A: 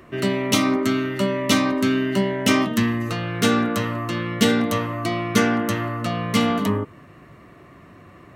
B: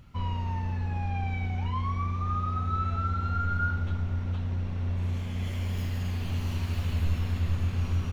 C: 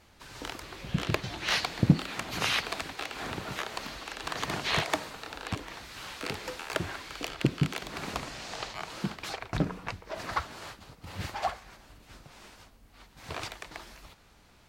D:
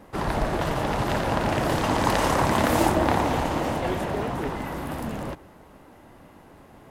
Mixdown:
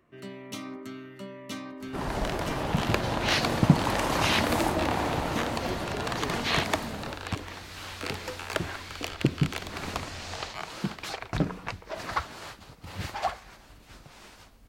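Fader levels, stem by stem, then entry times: -19.5, -18.5, +1.5, -6.0 dB; 0.00, 2.35, 1.80, 1.80 s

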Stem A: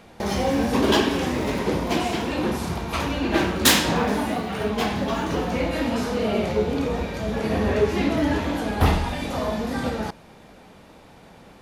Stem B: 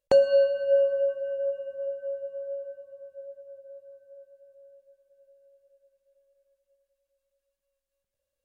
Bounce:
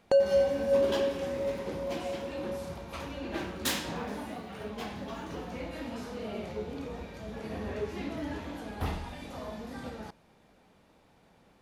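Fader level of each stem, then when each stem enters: -14.5, -4.0 dB; 0.00, 0.00 s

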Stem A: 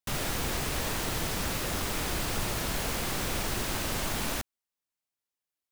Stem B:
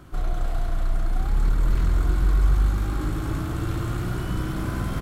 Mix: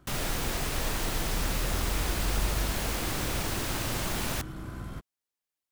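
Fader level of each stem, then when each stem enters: -0.5, -12.0 dB; 0.00, 0.00 s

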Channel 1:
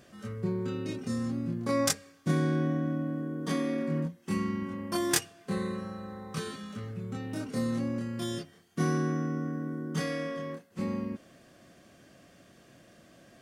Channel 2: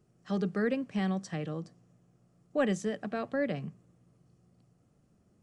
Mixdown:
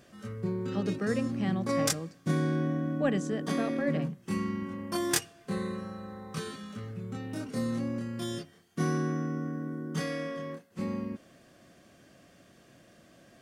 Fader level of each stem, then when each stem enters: -1.0, -1.0 dB; 0.00, 0.45 s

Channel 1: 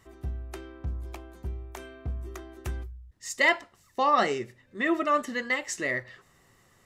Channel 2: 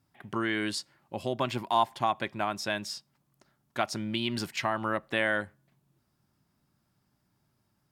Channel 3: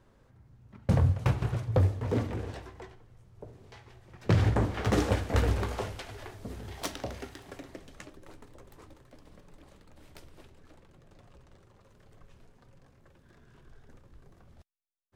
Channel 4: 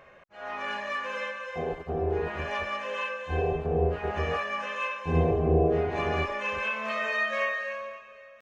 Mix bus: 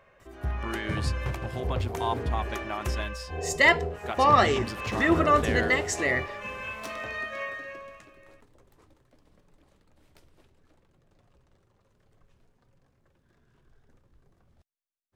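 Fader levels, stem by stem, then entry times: +3.0, -5.0, -7.5, -6.5 dB; 0.20, 0.30, 0.00, 0.00 s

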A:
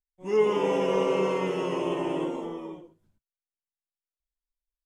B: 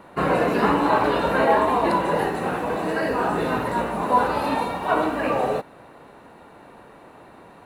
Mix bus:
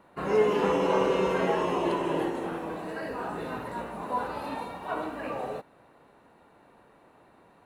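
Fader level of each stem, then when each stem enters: -1.0, -11.5 dB; 0.00, 0.00 s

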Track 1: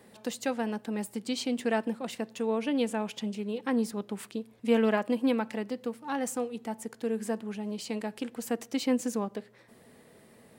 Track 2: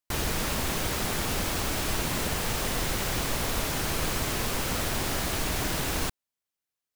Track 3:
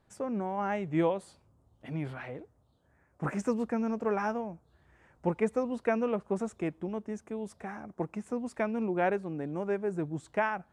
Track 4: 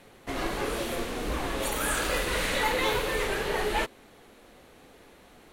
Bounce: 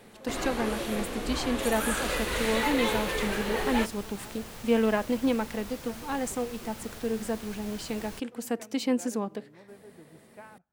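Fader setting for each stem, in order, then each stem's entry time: +0.5, -15.0, -19.5, -2.0 dB; 0.00, 2.10, 0.00, 0.00 s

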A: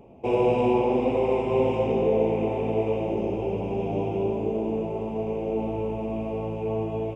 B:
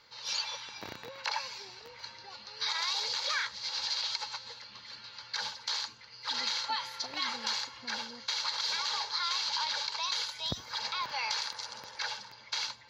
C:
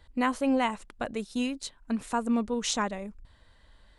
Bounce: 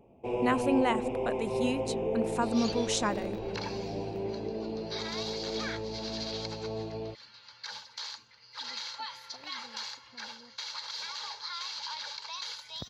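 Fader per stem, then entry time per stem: -9.0, -6.0, -1.5 dB; 0.00, 2.30, 0.25 s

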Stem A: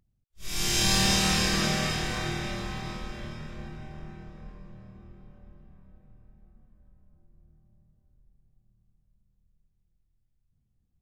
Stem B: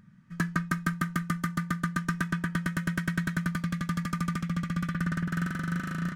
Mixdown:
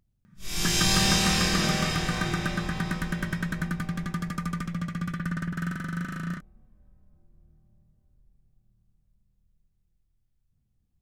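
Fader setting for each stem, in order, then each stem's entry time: +0.5, -1.0 dB; 0.00, 0.25 s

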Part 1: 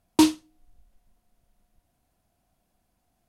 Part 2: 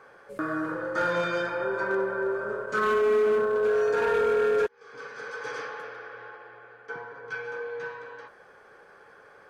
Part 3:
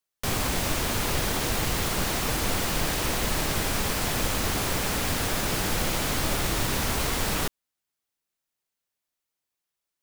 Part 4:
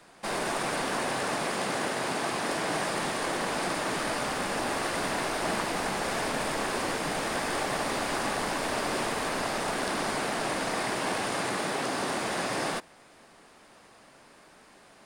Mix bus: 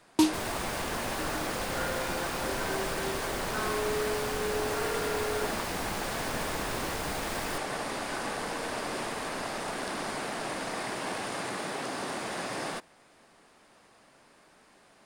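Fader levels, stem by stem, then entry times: -5.5, -10.0, -12.0, -4.5 dB; 0.00, 0.80, 0.10, 0.00 s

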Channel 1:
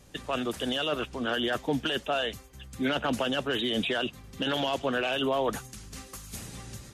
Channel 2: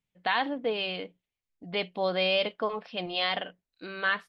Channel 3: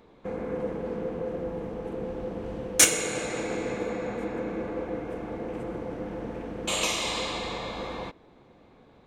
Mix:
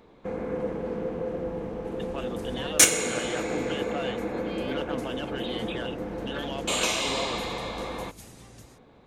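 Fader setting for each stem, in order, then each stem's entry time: -7.5, -16.0, +1.0 dB; 1.85, 2.30, 0.00 s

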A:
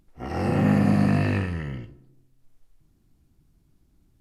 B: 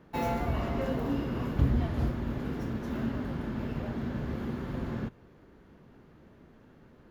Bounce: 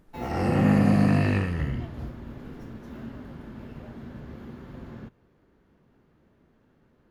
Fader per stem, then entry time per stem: 0.0, -7.0 dB; 0.00, 0.00 s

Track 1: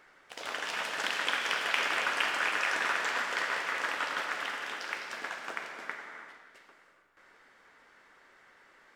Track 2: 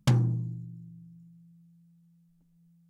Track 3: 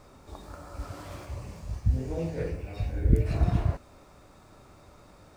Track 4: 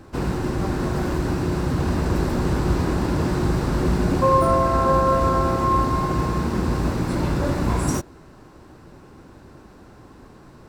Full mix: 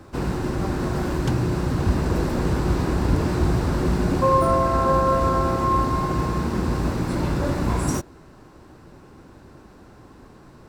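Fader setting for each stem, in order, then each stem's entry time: off, -3.0 dB, -1.5 dB, -1.0 dB; off, 1.20 s, 0.00 s, 0.00 s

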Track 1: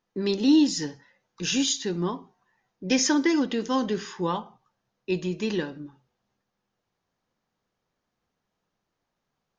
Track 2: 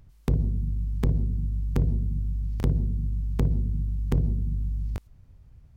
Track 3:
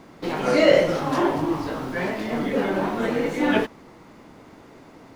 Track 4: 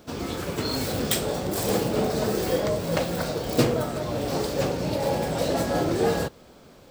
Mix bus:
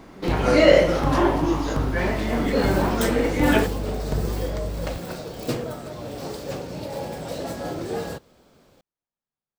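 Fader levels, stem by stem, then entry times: -16.5, -2.5, +1.5, -6.0 dB; 0.00, 0.00, 0.00, 1.90 s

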